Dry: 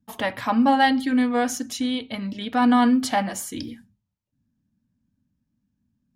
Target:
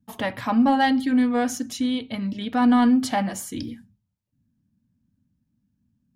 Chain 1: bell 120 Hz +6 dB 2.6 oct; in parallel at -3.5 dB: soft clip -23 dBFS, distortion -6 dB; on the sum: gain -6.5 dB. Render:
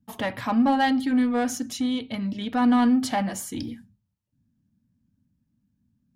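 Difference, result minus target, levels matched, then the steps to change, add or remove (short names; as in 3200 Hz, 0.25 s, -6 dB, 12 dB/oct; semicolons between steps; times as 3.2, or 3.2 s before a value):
soft clip: distortion +11 dB
change: soft clip -11.5 dBFS, distortion -17 dB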